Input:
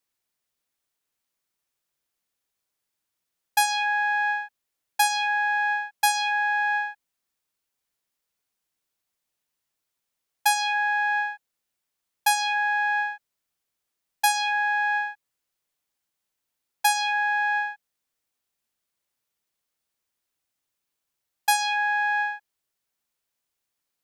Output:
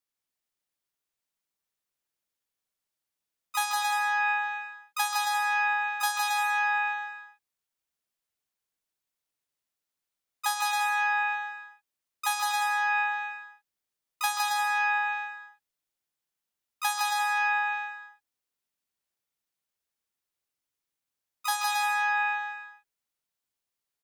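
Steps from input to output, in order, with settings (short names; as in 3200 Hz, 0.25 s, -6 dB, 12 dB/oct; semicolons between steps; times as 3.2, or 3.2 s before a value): harmoniser +3 st -17 dB, +7 st -5 dB; bouncing-ball echo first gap 0.16 s, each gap 0.7×, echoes 5; gain -8.5 dB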